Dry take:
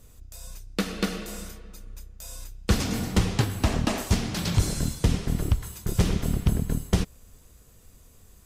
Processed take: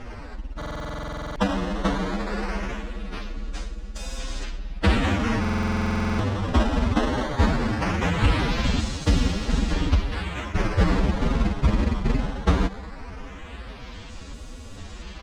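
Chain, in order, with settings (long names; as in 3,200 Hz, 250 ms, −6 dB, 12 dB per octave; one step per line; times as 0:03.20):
compressor on every frequency bin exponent 0.6
high-shelf EQ 3,800 Hz +7.5 dB
comb filter 3.6 ms, depth 33%
hum removal 196.6 Hz, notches 10
sample-and-hold swept by an LFO 11×, swing 160% 0.34 Hz
phase-vocoder stretch with locked phases 1.8×
high-frequency loss of the air 110 metres
buffer that repeats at 0:00.57/0:05.40, samples 2,048, times 16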